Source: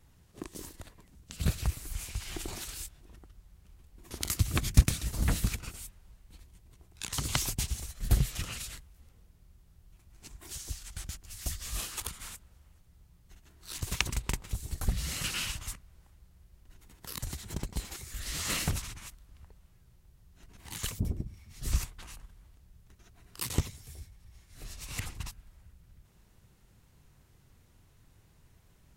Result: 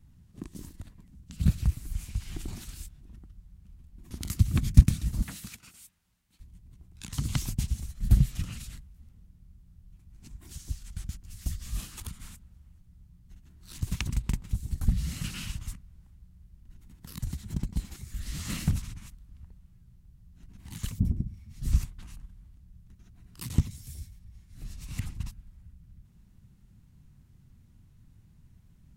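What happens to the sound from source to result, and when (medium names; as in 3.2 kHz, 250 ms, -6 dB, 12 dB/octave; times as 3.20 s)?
5.22–6.40 s: high-pass 1.2 kHz 6 dB/octave
23.70–24.18 s: treble shelf 3.3 kHz -> 2.2 kHz +11.5 dB
whole clip: resonant low shelf 310 Hz +11 dB, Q 1.5; trim -6.5 dB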